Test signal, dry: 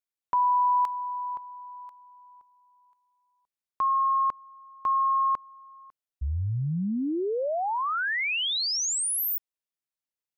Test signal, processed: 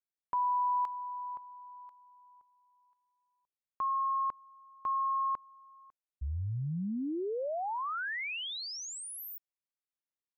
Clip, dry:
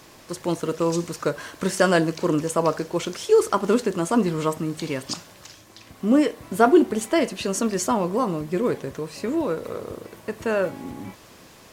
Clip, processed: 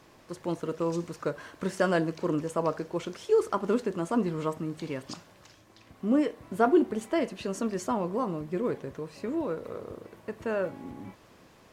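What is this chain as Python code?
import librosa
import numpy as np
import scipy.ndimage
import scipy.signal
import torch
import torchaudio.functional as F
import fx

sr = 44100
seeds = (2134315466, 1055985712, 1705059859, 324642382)

y = fx.high_shelf(x, sr, hz=3500.0, db=-9.5)
y = F.gain(torch.from_numpy(y), -6.5).numpy()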